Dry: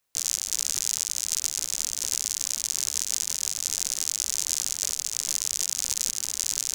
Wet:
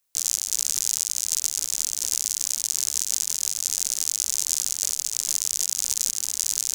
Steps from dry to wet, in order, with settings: treble shelf 4.2 kHz +9.5 dB; trim -4.5 dB

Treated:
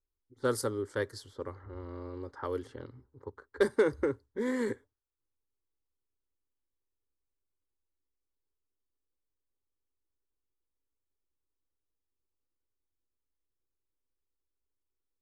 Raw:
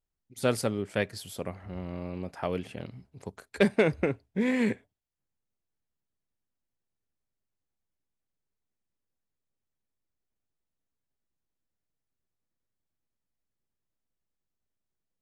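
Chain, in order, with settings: level-controlled noise filter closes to 990 Hz, open at -27.5 dBFS; static phaser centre 680 Hz, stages 6

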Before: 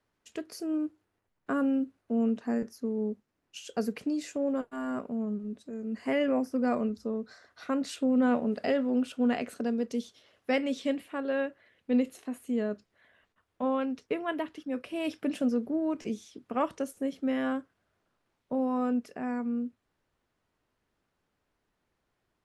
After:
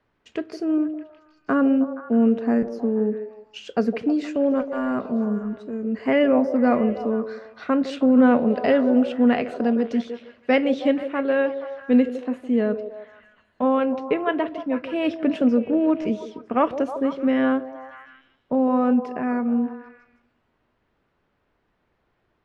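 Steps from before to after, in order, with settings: low-pass 3.1 kHz 12 dB/octave; repeats whose band climbs or falls 158 ms, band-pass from 460 Hz, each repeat 0.7 oct, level -7 dB; on a send at -23 dB: reverberation RT60 0.90 s, pre-delay 16 ms; on the sum: trim +9 dB

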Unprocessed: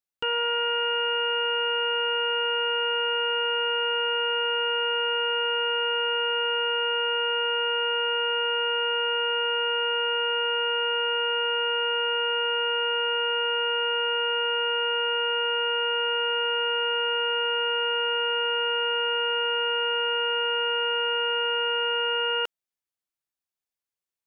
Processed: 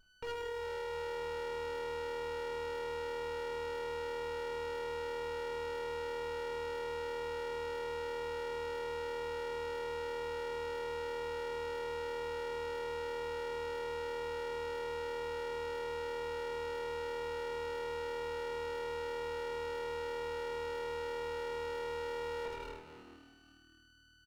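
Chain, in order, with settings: Chebyshev band-pass 250–2400 Hz, order 5; peak limiter -33 dBFS, peak gain reduction 11.5 dB; whistle 1.5 kHz -62 dBFS; frequency-shifting echo 167 ms, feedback 59%, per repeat -39 Hz, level -15 dB; overload inside the chain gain 35.5 dB; reverberation RT60 1.6 s, pre-delay 5 ms, DRR -5 dB; sliding maximum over 17 samples

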